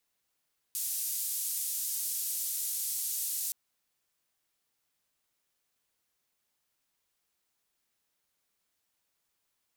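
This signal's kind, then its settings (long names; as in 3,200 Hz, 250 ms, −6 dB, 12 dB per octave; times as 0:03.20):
band-limited noise 6,900–15,000 Hz, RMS −34 dBFS 2.77 s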